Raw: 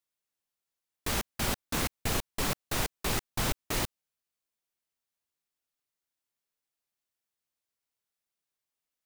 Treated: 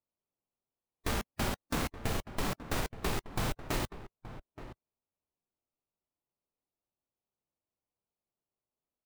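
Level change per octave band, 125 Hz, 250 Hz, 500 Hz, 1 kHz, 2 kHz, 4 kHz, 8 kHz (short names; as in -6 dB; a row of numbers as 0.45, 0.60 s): -1.0, -0.5, -1.0, -1.5, -3.5, -6.0, -8.0 dB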